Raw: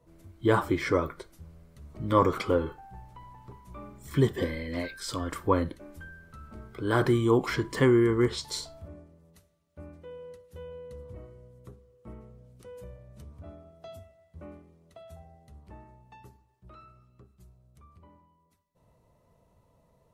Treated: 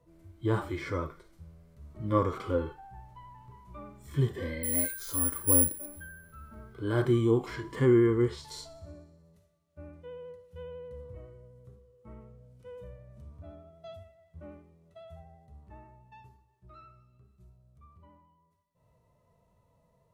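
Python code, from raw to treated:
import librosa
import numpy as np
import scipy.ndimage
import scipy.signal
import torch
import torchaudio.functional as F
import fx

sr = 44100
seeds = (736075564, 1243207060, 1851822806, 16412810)

p1 = fx.vibrato(x, sr, rate_hz=12.0, depth_cents=22.0)
p2 = fx.hpss(p1, sr, part='percussive', gain_db=-17)
p3 = fx.resample_bad(p2, sr, factor=4, down='filtered', up='zero_stuff', at=(4.63, 5.86))
y = p3 + fx.echo_wet_highpass(p3, sr, ms=61, feedback_pct=74, hz=4000.0, wet_db=-20.0, dry=0)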